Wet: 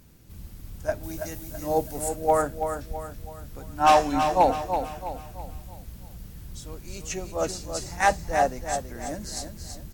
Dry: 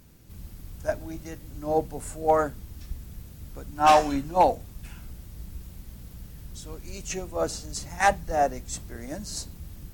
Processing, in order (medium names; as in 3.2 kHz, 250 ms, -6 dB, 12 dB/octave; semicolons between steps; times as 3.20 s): 1.03–2.09 s: treble shelf 4.9 kHz +12 dB; on a send: feedback delay 329 ms, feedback 42%, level -7.5 dB